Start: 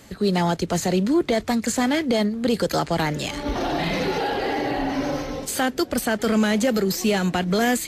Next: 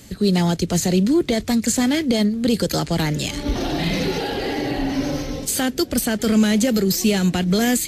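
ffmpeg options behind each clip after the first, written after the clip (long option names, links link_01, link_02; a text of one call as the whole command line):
ffmpeg -i in.wav -af "equalizer=frequency=980:width=0.5:gain=-11,volume=6.5dB" out.wav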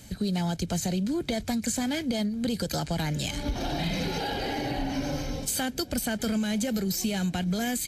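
ffmpeg -i in.wav -af "aecho=1:1:1.3:0.41,acompressor=threshold=-20dB:ratio=6,volume=-5dB" out.wav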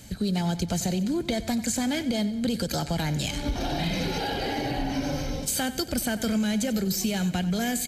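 ffmpeg -i in.wav -af "aecho=1:1:93|186|279|372|465:0.178|0.0889|0.0445|0.0222|0.0111,volume=1.5dB" out.wav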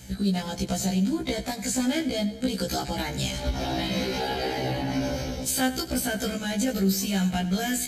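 ffmpeg -i in.wav -af "afftfilt=real='re*1.73*eq(mod(b,3),0)':imag='im*1.73*eq(mod(b,3),0)':win_size=2048:overlap=0.75,volume=3dB" out.wav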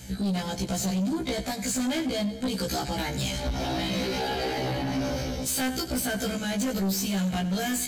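ffmpeg -i in.wav -af "asoftclip=type=tanh:threshold=-25dB,volume=2dB" out.wav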